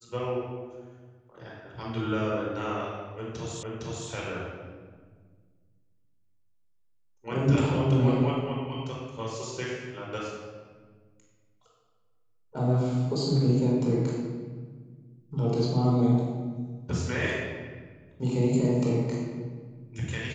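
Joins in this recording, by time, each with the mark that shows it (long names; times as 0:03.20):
0:03.63: the same again, the last 0.46 s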